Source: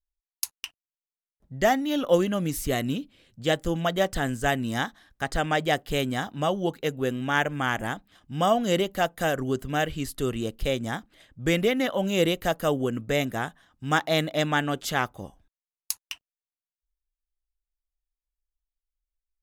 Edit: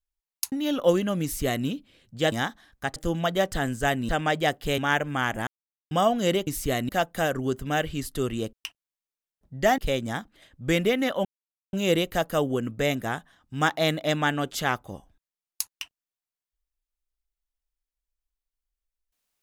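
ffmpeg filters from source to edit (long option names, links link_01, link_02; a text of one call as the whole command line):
ffmpeg -i in.wav -filter_complex "[0:a]asplit=13[link_01][link_02][link_03][link_04][link_05][link_06][link_07][link_08][link_09][link_10][link_11][link_12][link_13];[link_01]atrim=end=0.522[link_14];[link_02]atrim=start=1.768:end=3.572[link_15];[link_03]atrim=start=4.698:end=5.342[link_16];[link_04]atrim=start=3.568:end=4.702[link_17];[link_05]atrim=start=5.338:end=6.032[link_18];[link_06]atrim=start=7.228:end=7.92,asetpts=PTS-STARTPTS,afade=type=out:start_time=0.688:duration=0.004:curve=hsin[link_19];[link_07]atrim=start=7.92:end=8.36,asetpts=PTS-STARTPTS,volume=0[link_20];[link_08]atrim=start=8.36:end=8.922,asetpts=PTS-STARTPTS,afade=type=in:duration=0.004:curve=hsin[link_21];[link_09]atrim=start=2.478:end=2.902[link_22];[link_10]atrim=start=8.918:end=10.562[link_23];[link_11]atrim=start=0.518:end=1.772[link_24];[link_12]atrim=start=10.558:end=12.03,asetpts=PTS-STARTPTS,afade=type=out:start_time=1.468:duration=0.004:curve=hsin,apad=pad_dur=0.48[link_25];[link_13]atrim=start=12.03,asetpts=PTS-STARTPTS,afade=type=in:duration=0.004:curve=hsin[link_26];[link_14][link_15]acrossfade=duration=0.004:curve1=hsin:curve2=hsin[link_27];[link_27][link_16]acrossfade=duration=0.004:curve1=hsin:curve2=hsin[link_28];[link_28][link_17]acrossfade=duration=0.004:curve1=hsin:curve2=hsin[link_29];[link_29][link_18]acrossfade=duration=0.004:curve1=hsin:curve2=hsin[link_30];[link_19][link_20][link_21]concat=n=3:v=0:a=1[link_31];[link_30][link_31]acrossfade=duration=0.004:curve1=hsin:curve2=hsin[link_32];[link_32][link_22]acrossfade=duration=0.004:curve1=hsin:curve2=hsin[link_33];[link_33][link_23]acrossfade=duration=0.004:curve1=hsin:curve2=hsin[link_34];[link_34][link_24]acrossfade=duration=0.004:curve1=hsin:curve2=hsin[link_35];[link_25][link_26]concat=n=2:v=0:a=1[link_36];[link_35][link_36]acrossfade=duration=0.004:curve1=hsin:curve2=hsin" out.wav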